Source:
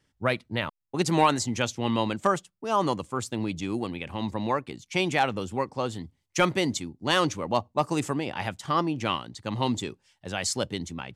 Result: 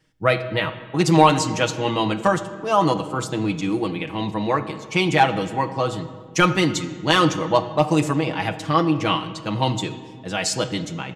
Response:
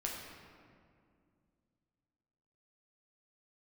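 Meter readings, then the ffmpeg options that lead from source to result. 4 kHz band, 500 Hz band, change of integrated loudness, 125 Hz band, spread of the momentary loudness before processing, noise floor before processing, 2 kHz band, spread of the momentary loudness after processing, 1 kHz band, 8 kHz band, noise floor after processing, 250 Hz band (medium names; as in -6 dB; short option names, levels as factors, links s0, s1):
+6.0 dB, +7.0 dB, +6.5 dB, +8.0 dB, 9 LU, -76 dBFS, +6.5 dB, 9 LU, +6.5 dB, +4.0 dB, -40 dBFS, +7.0 dB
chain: -filter_complex "[0:a]aecho=1:1:6.3:0.72,asplit=2[s0][s1];[1:a]atrim=start_sample=2205,asetrate=61740,aresample=44100,lowpass=6800[s2];[s1][s2]afir=irnorm=-1:irlink=0,volume=0.631[s3];[s0][s3]amix=inputs=2:normalize=0,volume=1.26"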